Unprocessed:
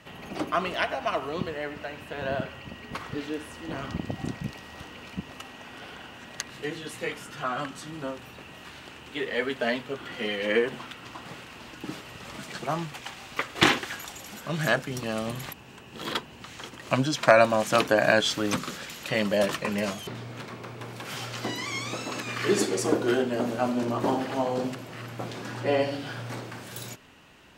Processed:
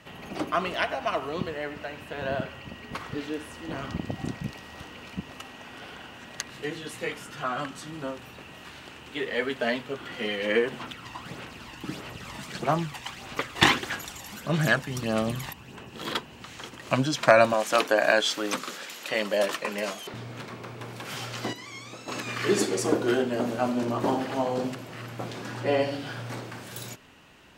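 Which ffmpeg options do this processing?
-filter_complex "[0:a]asettb=1/sr,asplit=3[s0][s1][s2];[s0]atrim=end=10.814[s3];[s1]atrim=start=10.81:end=15.9,asetpts=PTS-STARTPTS,afade=t=in:d=0.004:c=qsin,afade=t=out:st=5.086:d=0.004:c=qsin,aphaser=in_gain=1:out_gain=1:delay=1.1:decay=0.44:speed=1.6:type=sinusoidal[s4];[s2]atrim=start=15.896[s5];[s3][s4]acrossfade=d=0.004:c1=hsin:c2=qsin[s6];[s6][s5]acrossfade=d=0.004:c1=qsin:c2=hsin,asettb=1/sr,asplit=3[s7][s8][s9];[s7]atrim=end=17.534[s10];[s8]atrim=start=17.53:end=20.14,asetpts=PTS-STARTPTS,afade=t=in:d=0.004:c=qsin,afade=t=out:st=2.606:d=0.004:c=qsin,highpass=320[s11];[s9]atrim=start=20.136[s12];[s10][s11]acrossfade=d=0.004:c1=hsin:c2=qsin[s13];[s13][s12]acrossfade=d=0.004:c1=qsin:c2=hsin,asplit=3[s14][s15][s16];[s14]atrim=end=21.532[s17];[s15]atrim=start=21.528:end=22.082,asetpts=PTS-STARTPTS,volume=0.355[s18];[s16]atrim=start=22.078[s19];[s17][s18]acrossfade=d=0.004:c1=hsin:c2=hsin[s20];[s20][s19]acrossfade=d=0.004:c1=hsin:c2=hsin"

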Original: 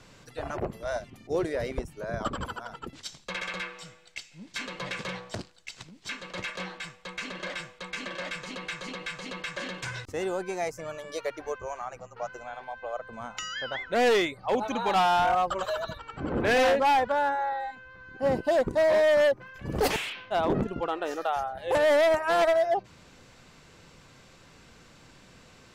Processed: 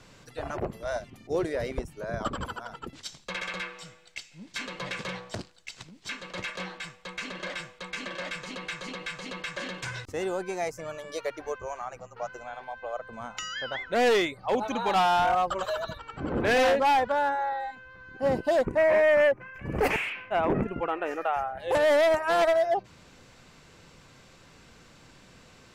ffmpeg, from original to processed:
-filter_complex "[0:a]asettb=1/sr,asplit=3[s0][s1][s2];[s0]atrim=end=18.654[s3];[s1]atrim=start=18.65:end=21.6,asetpts=PTS-STARTPTS,afade=t=in:d=0.004:c=qsin,afade=t=out:st=2.946:d=0.004:c=qsin,highshelf=f=3000:t=q:w=3:g=-7[s4];[s2]atrim=start=21.596[s5];[s3][s4]acrossfade=d=0.004:c1=hsin:c2=qsin[s6];[s6][s5]acrossfade=d=0.004:c1=qsin:c2=hsin"

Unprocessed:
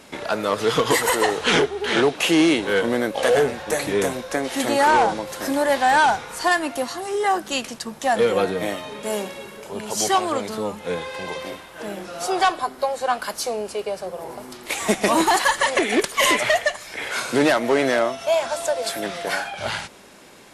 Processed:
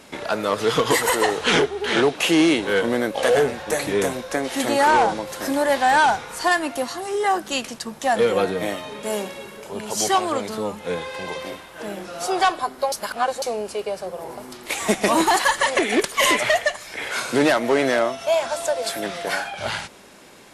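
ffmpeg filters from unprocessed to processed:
-filter_complex "[0:a]asplit=3[s0][s1][s2];[s0]atrim=end=12.922[s3];[s1]atrim=start=12.918:end=13.422,asetpts=PTS-STARTPTS,areverse[s4];[s2]atrim=start=13.418[s5];[s3][s4]acrossfade=d=0.004:c1=hsin:c2=hsin[s6];[s6][s5]acrossfade=d=0.004:c1=hsin:c2=hsin"

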